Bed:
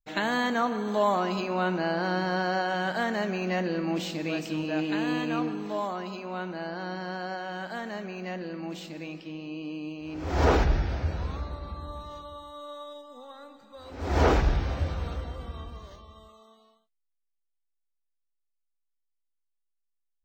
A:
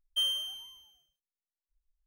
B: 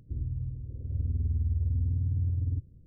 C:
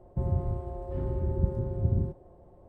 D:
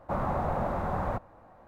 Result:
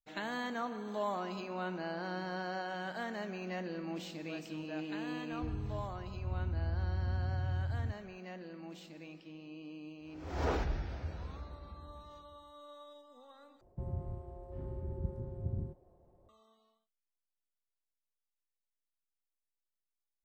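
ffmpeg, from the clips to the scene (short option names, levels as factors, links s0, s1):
-filter_complex "[0:a]volume=0.266,asplit=2[s0][s1];[s0]atrim=end=13.614[s2];[3:a]atrim=end=2.68,asetpts=PTS-STARTPTS,volume=0.282[s3];[s1]atrim=start=16.286[s4];[2:a]atrim=end=2.86,asetpts=PTS-STARTPTS,volume=0.473,afade=t=in:d=0.004:c=hsin,afade=t=out:st=2.856:d=0.004:c=hsin,adelay=5320[s5];[s2][s3]acrossfade=d=0.004:c1=hsin:c2=hsin[s6];[s6][s4]acrossfade=d=0.004:c1=hsin:c2=hsin[s7];[s7][s5]amix=inputs=2:normalize=0"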